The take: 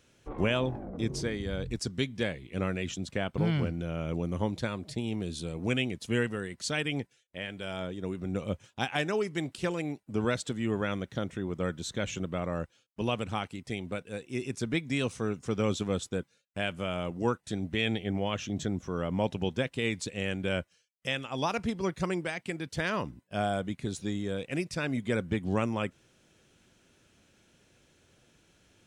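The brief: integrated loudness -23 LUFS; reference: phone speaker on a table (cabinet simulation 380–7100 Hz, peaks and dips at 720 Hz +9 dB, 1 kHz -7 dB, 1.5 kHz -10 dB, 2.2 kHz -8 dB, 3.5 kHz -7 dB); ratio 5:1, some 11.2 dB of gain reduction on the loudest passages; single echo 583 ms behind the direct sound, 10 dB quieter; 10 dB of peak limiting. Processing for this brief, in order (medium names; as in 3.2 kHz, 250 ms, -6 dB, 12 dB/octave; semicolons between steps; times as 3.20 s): compression 5:1, threshold -36 dBFS; peak limiter -31.5 dBFS; cabinet simulation 380–7100 Hz, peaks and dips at 720 Hz +9 dB, 1 kHz -7 dB, 1.5 kHz -10 dB, 2.2 kHz -8 dB, 3.5 kHz -7 dB; delay 583 ms -10 dB; trim +23.5 dB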